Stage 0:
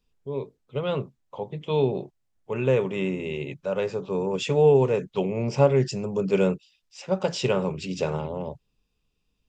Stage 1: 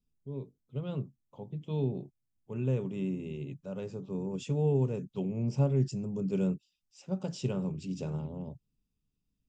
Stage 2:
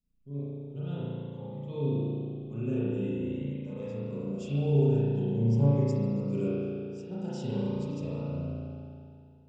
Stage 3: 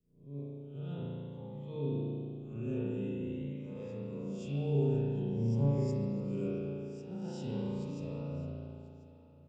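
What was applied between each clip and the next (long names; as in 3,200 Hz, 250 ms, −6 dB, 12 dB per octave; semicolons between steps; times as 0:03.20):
octave-band graphic EQ 125/250/500/1,000/2,000/4,000 Hz +5/+5/−7/−6/−11/−5 dB; level −8 dB
spring reverb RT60 2.5 s, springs 35 ms, chirp 40 ms, DRR −9.5 dB; phaser whose notches keep moving one way rising 0.48 Hz; level −5.5 dB
peak hold with a rise ahead of every peak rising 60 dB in 0.48 s; single-tap delay 1,038 ms −19.5 dB; level −6.5 dB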